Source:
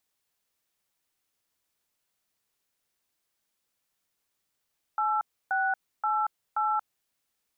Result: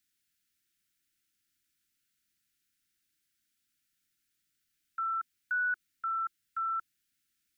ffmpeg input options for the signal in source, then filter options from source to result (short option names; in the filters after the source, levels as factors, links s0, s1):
-f lavfi -i "aevalsrc='0.0473*clip(min(mod(t,0.528),0.231-mod(t,0.528))/0.002,0,1)*(eq(floor(t/0.528),0)*(sin(2*PI*852*mod(t,0.528))+sin(2*PI*1336*mod(t,0.528)))+eq(floor(t/0.528),1)*(sin(2*PI*770*mod(t,0.528))+sin(2*PI*1477*mod(t,0.528)))+eq(floor(t/0.528),2)*(sin(2*PI*852*mod(t,0.528))+sin(2*PI*1336*mod(t,0.528)))+eq(floor(t/0.528),3)*(sin(2*PI*852*mod(t,0.528))+sin(2*PI*1336*mod(t,0.528))))':d=2.112:s=44100"
-af "asuperstop=centerf=690:order=20:qfactor=0.71"